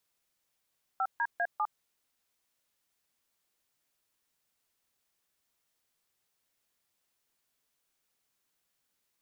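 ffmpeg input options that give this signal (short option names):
-f lavfi -i "aevalsrc='0.0335*clip(min(mod(t,0.199),0.056-mod(t,0.199))/0.002,0,1)*(eq(floor(t/0.199),0)*(sin(2*PI*770*mod(t,0.199))+sin(2*PI*1336*mod(t,0.199)))+eq(floor(t/0.199),1)*(sin(2*PI*941*mod(t,0.199))+sin(2*PI*1633*mod(t,0.199)))+eq(floor(t/0.199),2)*(sin(2*PI*697*mod(t,0.199))+sin(2*PI*1633*mod(t,0.199)))+eq(floor(t/0.199),3)*(sin(2*PI*852*mod(t,0.199))+sin(2*PI*1209*mod(t,0.199))))':d=0.796:s=44100"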